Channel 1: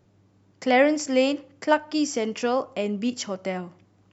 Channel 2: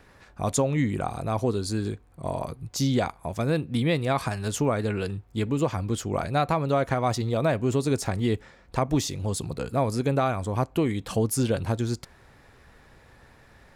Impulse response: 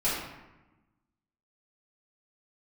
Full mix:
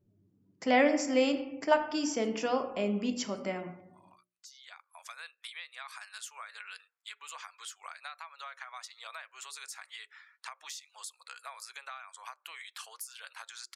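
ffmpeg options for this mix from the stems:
-filter_complex "[0:a]volume=0.473,asplit=3[s0][s1][s2];[s1]volume=0.15[s3];[1:a]highpass=f=1200:w=0.5412,highpass=f=1200:w=1.3066,acompressor=threshold=0.00891:ratio=8,adelay=1700,volume=1[s4];[s2]apad=whole_len=681680[s5];[s4][s5]sidechaincompress=threshold=0.00355:ratio=12:attack=9.1:release=1180[s6];[2:a]atrim=start_sample=2205[s7];[s3][s7]afir=irnorm=-1:irlink=0[s8];[s0][s6][s8]amix=inputs=3:normalize=0,afftdn=nr=19:nf=-61,bandreject=f=60:t=h:w=6,bandreject=f=120:t=h:w=6,bandreject=f=180:t=h:w=6,bandreject=f=240:t=h:w=6,bandreject=f=300:t=h:w=6,bandreject=f=360:t=h:w=6,bandreject=f=420:t=h:w=6,bandreject=f=480:t=h:w=6,bandreject=f=540:t=h:w=6,bandreject=f=600:t=h:w=6"

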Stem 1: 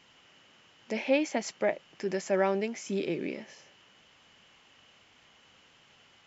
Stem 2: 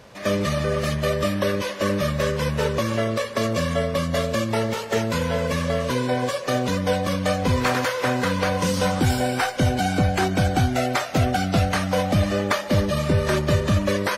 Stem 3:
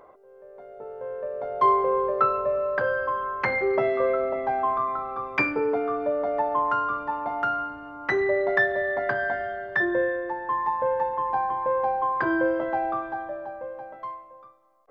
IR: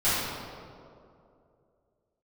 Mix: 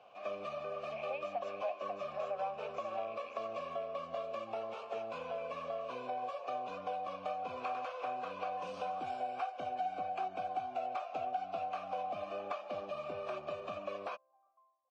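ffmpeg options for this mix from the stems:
-filter_complex "[0:a]lowshelf=f=520:t=q:w=3:g=-7.5,bandreject=f=670:w=20,volume=1.33,asplit=2[s0][s1];[s1]volume=0.473[s2];[1:a]acrossover=split=190|3000[s3][s4][s5];[s3]acompressor=threshold=0.0316:ratio=1.5[s6];[s6][s4][s5]amix=inputs=3:normalize=0,lowpass=8200,volume=0.841[s7];[2:a]volume=0.1,asplit=2[s8][s9];[s9]volume=0.447[s10];[s2][s10]amix=inputs=2:normalize=0,aecho=0:1:540:1[s11];[s0][s7][s8][s11]amix=inputs=4:normalize=0,asplit=3[s12][s13][s14];[s12]bandpass=f=730:t=q:w=8,volume=1[s15];[s13]bandpass=f=1090:t=q:w=8,volume=0.501[s16];[s14]bandpass=f=2440:t=q:w=8,volume=0.355[s17];[s15][s16][s17]amix=inputs=3:normalize=0,acompressor=threshold=0.01:ratio=2"

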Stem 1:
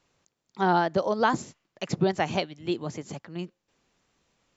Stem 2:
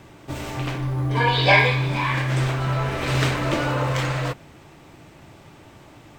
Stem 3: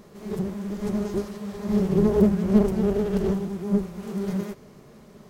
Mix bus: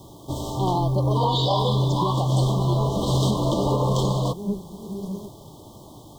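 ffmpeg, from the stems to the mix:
-filter_complex "[0:a]volume=0.794,asplit=2[s0][s1];[1:a]acrusher=bits=8:mix=0:aa=0.000001,volume=1.26[s2];[2:a]adelay=750,volume=0.631[s3];[s1]apad=whole_len=266519[s4];[s3][s4]sidechaincompress=threshold=0.00562:ratio=8:attack=16:release=111[s5];[s0][s2][s5]amix=inputs=3:normalize=0,asuperstop=centerf=1900:order=20:qfactor=0.96,alimiter=limit=0.251:level=0:latency=1:release=89"

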